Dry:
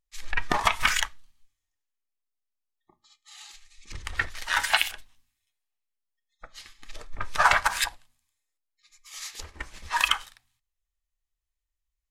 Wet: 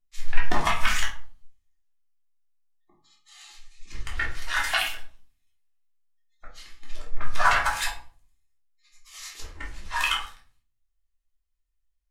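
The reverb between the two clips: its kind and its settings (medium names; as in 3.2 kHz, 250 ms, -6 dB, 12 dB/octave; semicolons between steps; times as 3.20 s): simulated room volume 340 m³, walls furnished, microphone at 3.2 m; trim -6.5 dB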